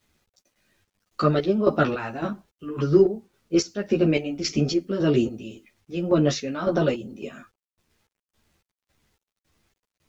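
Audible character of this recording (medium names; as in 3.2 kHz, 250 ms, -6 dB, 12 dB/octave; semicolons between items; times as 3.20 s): chopped level 1.8 Hz, depth 65%, duty 50%; a quantiser's noise floor 12-bit, dither none; a shimmering, thickened sound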